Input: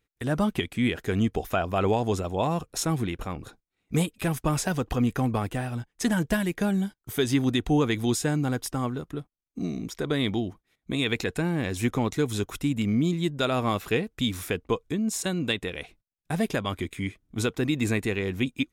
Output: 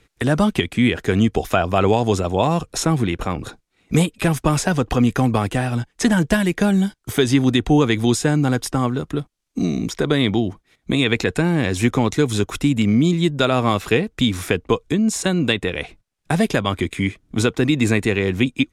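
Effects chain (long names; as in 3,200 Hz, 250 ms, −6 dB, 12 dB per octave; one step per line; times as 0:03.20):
low-pass filter 10,000 Hz 12 dB per octave
multiband upward and downward compressor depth 40%
level +8 dB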